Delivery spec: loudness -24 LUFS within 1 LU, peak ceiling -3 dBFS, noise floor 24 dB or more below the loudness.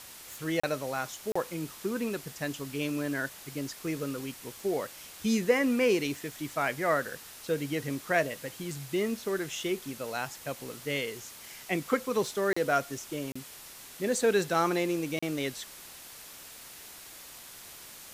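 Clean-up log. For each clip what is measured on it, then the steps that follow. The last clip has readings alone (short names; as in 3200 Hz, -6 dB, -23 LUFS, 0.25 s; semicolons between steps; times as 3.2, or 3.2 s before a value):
dropouts 5; longest dropout 35 ms; noise floor -48 dBFS; noise floor target -56 dBFS; loudness -31.5 LUFS; peak -12.5 dBFS; loudness target -24.0 LUFS
-> interpolate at 0.6/1.32/12.53/13.32/15.19, 35 ms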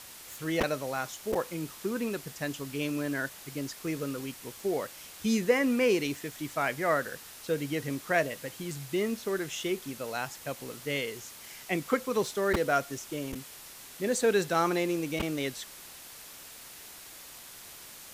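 dropouts 0; noise floor -48 dBFS; noise floor target -56 dBFS
-> noise print and reduce 8 dB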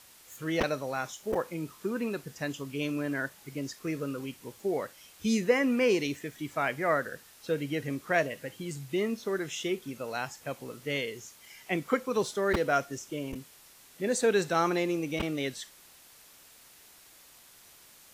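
noise floor -56 dBFS; loudness -31.5 LUFS; peak -12.5 dBFS; loudness target -24.0 LUFS
-> gain +7.5 dB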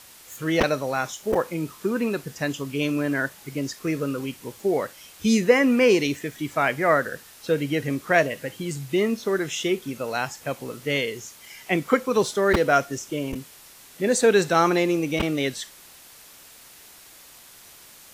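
loudness -24.0 LUFS; peak -5.0 dBFS; noise floor -48 dBFS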